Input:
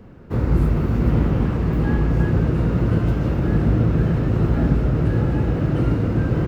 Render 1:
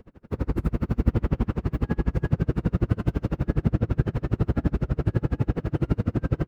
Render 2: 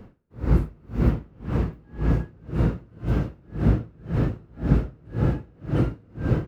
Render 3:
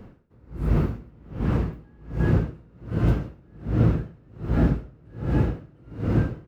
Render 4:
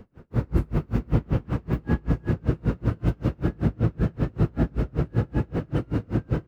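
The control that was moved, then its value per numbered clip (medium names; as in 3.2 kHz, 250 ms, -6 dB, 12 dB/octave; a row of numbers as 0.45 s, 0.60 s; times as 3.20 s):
logarithmic tremolo, rate: 12 Hz, 1.9 Hz, 1.3 Hz, 5.2 Hz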